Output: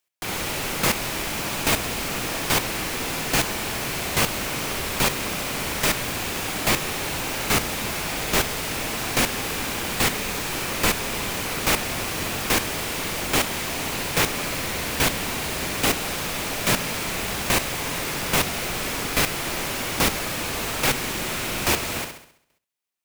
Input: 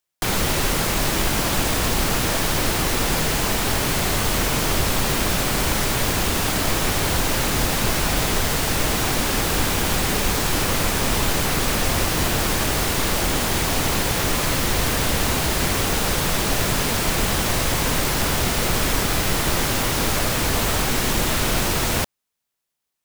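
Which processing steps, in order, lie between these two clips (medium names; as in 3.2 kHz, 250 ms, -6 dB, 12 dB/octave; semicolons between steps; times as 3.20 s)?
peaking EQ 2.4 kHz +4.5 dB 0.51 oct; flutter echo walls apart 11.4 m, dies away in 0.62 s; square tremolo 1.2 Hz, depth 65%, duty 10%; bass shelf 83 Hz -11 dB; trim +2 dB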